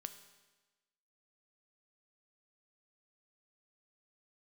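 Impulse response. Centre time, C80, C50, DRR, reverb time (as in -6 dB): 11 ms, 13.0 dB, 11.5 dB, 9.0 dB, 1.2 s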